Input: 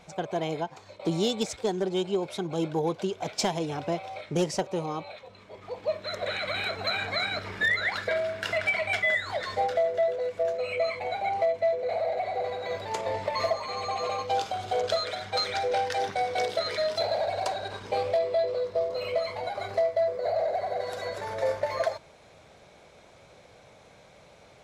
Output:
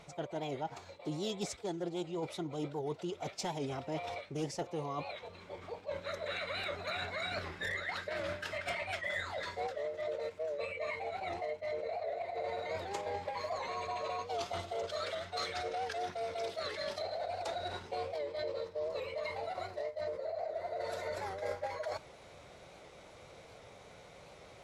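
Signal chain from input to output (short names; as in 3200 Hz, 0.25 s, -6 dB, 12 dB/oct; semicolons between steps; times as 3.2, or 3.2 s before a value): reverse; compressor 6:1, threshold -35 dBFS, peak gain reduction 13 dB; reverse; formant-preserving pitch shift -1.5 st; record warp 78 rpm, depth 100 cents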